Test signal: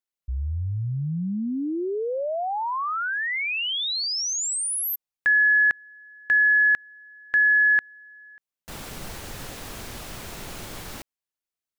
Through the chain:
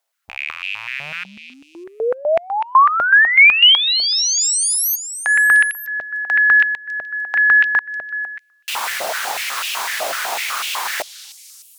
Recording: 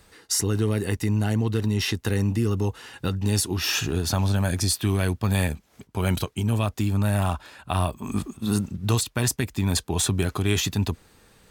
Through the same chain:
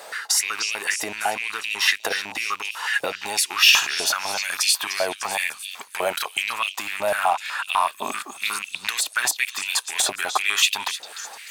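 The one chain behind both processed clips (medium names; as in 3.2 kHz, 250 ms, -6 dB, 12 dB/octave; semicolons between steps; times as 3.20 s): rattle on loud lows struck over -26 dBFS, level -27 dBFS; compression 3:1, threshold -34 dBFS; repeats whose band climbs or falls 301 ms, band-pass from 4.4 kHz, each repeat 0.7 oct, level -7 dB; loudness maximiser +22.5 dB; step-sequenced high-pass 8 Hz 640–2700 Hz; trim -8 dB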